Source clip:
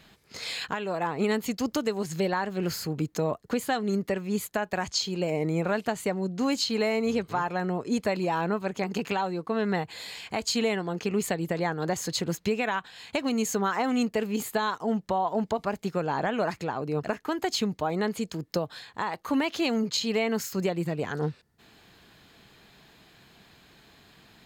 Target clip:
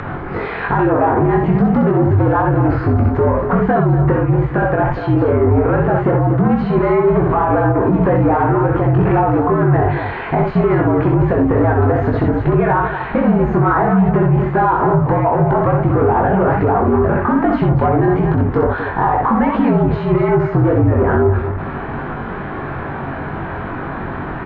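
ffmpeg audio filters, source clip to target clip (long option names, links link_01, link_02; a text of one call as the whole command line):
ffmpeg -i in.wav -af "aeval=exprs='val(0)+0.5*0.00794*sgn(val(0))':channel_layout=same,lowshelf=frequency=80:gain=-11,bandreject=frequency=660:width=12,asoftclip=type=tanh:threshold=-29dB,acompressor=threshold=-34dB:ratio=6,lowpass=frequency=1500:width=0.5412,lowpass=frequency=1500:width=1.3066,aecho=1:1:64.14|239.1:0.631|0.316,afreqshift=-58,flanger=delay=20:depth=2.3:speed=2.4,acompressor=mode=upward:threshold=-55dB:ratio=2.5,alimiter=level_in=31.5dB:limit=-1dB:release=50:level=0:latency=1,volume=-4.5dB" out.wav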